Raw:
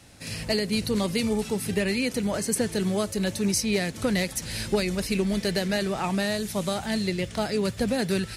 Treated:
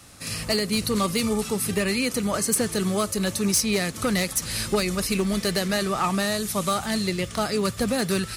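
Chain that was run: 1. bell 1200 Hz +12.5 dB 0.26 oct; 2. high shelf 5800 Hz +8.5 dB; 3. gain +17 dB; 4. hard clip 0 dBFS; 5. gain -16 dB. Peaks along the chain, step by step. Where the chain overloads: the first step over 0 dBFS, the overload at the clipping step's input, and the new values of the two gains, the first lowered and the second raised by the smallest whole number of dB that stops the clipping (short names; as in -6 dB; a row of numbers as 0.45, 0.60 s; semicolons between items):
-12.5, -8.5, +8.5, 0.0, -16.0 dBFS; step 3, 8.5 dB; step 3 +8 dB, step 5 -7 dB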